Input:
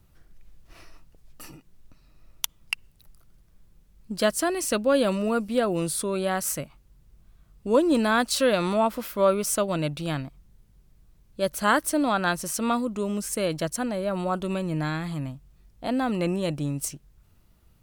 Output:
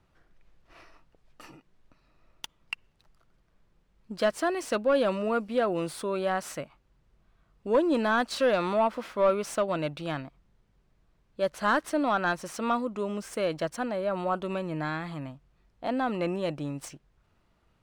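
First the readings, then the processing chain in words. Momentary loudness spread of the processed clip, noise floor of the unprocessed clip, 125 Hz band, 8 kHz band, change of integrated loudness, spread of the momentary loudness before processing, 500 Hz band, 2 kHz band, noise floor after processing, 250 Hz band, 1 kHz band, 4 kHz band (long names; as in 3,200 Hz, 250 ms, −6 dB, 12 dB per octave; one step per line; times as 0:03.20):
14 LU, −60 dBFS, −7.0 dB, −13.0 dB, −3.0 dB, 11 LU, −2.0 dB, −2.5 dB, −69 dBFS, −5.0 dB, −1.5 dB, −6.5 dB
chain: running median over 3 samples
mid-hump overdrive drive 14 dB, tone 1,500 Hz, clips at −6 dBFS
level −5 dB
MP3 112 kbit/s 48,000 Hz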